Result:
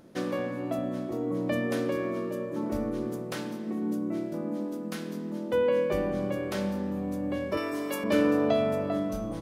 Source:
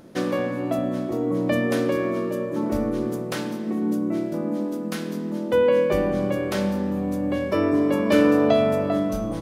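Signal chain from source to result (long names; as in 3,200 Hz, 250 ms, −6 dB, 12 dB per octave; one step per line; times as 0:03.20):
0:07.57–0:08.04: spectral tilt +4 dB per octave
level −6.5 dB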